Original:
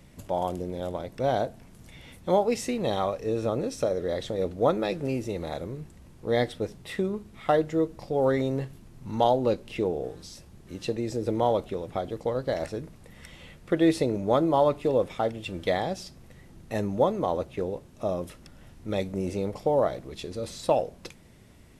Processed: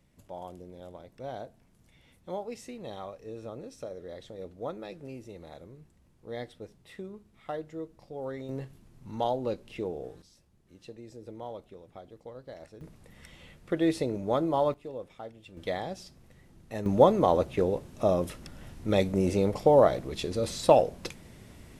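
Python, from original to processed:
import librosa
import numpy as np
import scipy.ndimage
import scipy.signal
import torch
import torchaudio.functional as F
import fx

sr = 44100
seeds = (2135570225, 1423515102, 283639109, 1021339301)

y = fx.gain(x, sr, db=fx.steps((0.0, -13.5), (8.49, -7.0), (10.22, -16.5), (12.81, -4.5), (14.74, -15.5), (15.57, -6.5), (16.86, 4.0)))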